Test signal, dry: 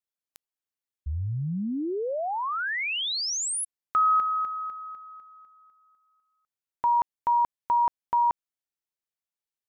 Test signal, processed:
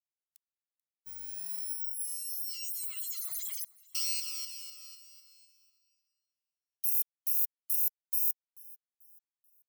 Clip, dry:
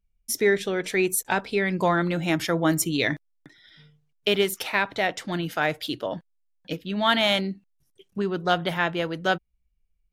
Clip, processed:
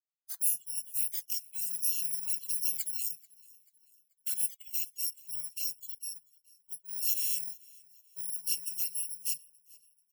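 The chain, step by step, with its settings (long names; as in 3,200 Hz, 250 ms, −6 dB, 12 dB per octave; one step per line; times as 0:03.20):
samples in bit-reversed order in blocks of 128 samples
first-order pre-emphasis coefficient 0.9
notch filter 3,500 Hz, Q 27
noise reduction from a noise print of the clip's start 22 dB
low-shelf EQ 290 Hz −8.5 dB
flanger swept by the level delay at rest 2 ms, full sweep at −15 dBFS
repeating echo 437 ms, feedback 43%, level −24 dB
level −7 dB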